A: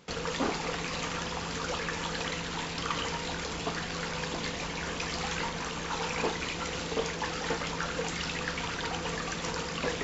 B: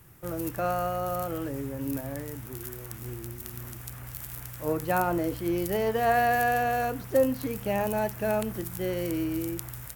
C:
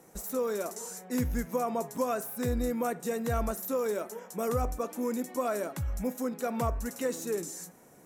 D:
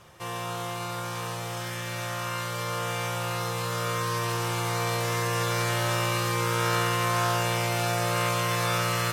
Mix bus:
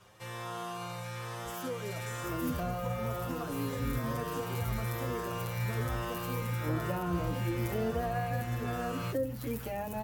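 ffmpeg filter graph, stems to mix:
ffmpeg -i stem1.wav -i stem2.wav -i stem3.wav -i stem4.wav -filter_complex "[0:a]adelay=1800,volume=-17dB[link_01];[1:a]adelay=2000,volume=1dB[link_02];[2:a]adelay=1300,volume=-4dB[link_03];[3:a]acrossover=split=3100[link_04][link_05];[link_05]acompressor=threshold=-42dB:ratio=4:attack=1:release=60[link_06];[link_04][link_06]amix=inputs=2:normalize=0,volume=-3dB[link_07];[link_01][link_02][link_03][link_07]amix=inputs=4:normalize=0,acrossover=split=300[link_08][link_09];[link_09]acompressor=threshold=-33dB:ratio=6[link_10];[link_08][link_10]amix=inputs=2:normalize=0,asplit=2[link_11][link_12];[link_12]adelay=7.8,afreqshift=1.1[link_13];[link_11][link_13]amix=inputs=2:normalize=1" out.wav

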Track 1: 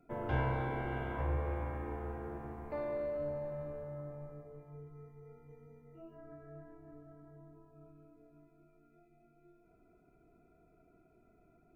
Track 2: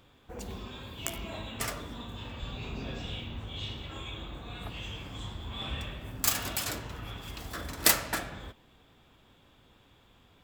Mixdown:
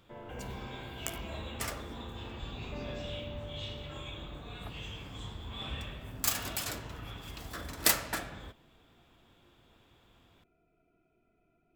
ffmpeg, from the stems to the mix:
ffmpeg -i stem1.wav -i stem2.wav -filter_complex "[0:a]alimiter=level_in=8dB:limit=-24dB:level=0:latency=1,volume=-8dB,lowpass=frequency=3000:width_type=q:width=4.6,volume=-6.5dB[link_01];[1:a]volume=-3dB[link_02];[link_01][link_02]amix=inputs=2:normalize=0" out.wav

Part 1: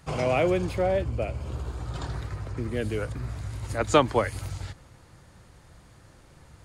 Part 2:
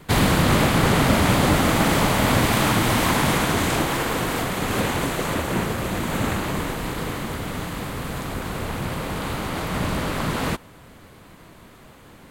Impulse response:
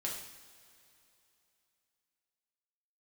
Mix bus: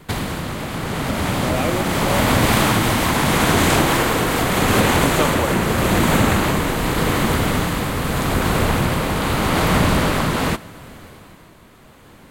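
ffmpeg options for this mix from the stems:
-filter_complex "[0:a]adelay=1250,volume=-2dB[link_01];[1:a]acompressor=threshold=-22dB:ratio=6,tremolo=f=0.82:d=0.33,dynaudnorm=framelen=200:gausssize=17:maxgain=10dB,volume=0.5dB,asplit=2[link_02][link_03];[link_03]volume=-16dB[link_04];[2:a]atrim=start_sample=2205[link_05];[link_04][link_05]afir=irnorm=-1:irlink=0[link_06];[link_01][link_02][link_06]amix=inputs=3:normalize=0"

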